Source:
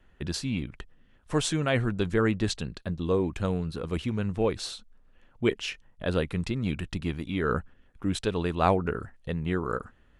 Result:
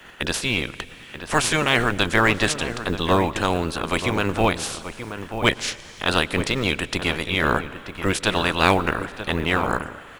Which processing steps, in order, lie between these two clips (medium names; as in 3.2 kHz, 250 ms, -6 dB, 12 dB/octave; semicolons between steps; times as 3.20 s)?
spectral peaks clipped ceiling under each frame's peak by 22 dB; in parallel at -5 dB: hard clipper -18.5 dBFS, distortion -13 dB; on the sum: echo from a far wall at 160 m, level -10 dB; on a send at -18.5 dB: reverberation RT60 1.8 s, pre-delay 93 ms; on the sum: short-mantissa float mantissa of 4-bit; tape noise reduction on one side only encoder only; trim +3 dB